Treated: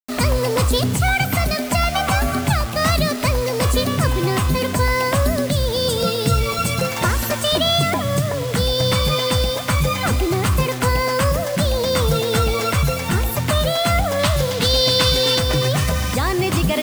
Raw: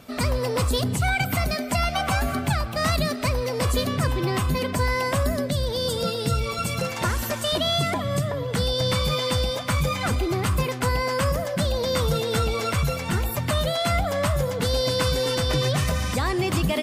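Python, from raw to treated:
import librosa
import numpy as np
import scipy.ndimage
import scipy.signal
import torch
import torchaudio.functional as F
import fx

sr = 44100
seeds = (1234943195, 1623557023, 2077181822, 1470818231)

y = fx.rider(x, sr, range_db=10, speed_s=2.0)
y = fx.quant_dither(y, sr, seeds[0], bits=6, dither='none')
y = fx.peak_eq(y, sr, hz=3800.0, db=8.5, octaves=1.1, at=(14.19, 15.39))
y = y * 10.0 ** (5.0 / 20.0)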